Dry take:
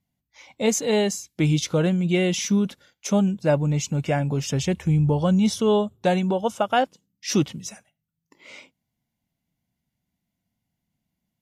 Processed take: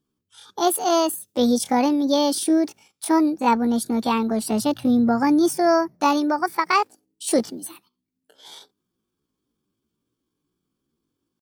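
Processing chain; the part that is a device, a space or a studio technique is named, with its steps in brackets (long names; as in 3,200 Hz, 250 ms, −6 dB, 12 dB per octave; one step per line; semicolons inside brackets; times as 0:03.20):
chipmunk voice (pitch shifter +8 semitones)
level +1.5 dB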